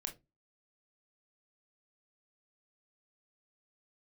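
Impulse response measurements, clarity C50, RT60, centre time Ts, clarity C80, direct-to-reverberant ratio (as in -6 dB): 14.5 dB, 0.20 s, 12 ms, 23.5 dB, 4.0 dB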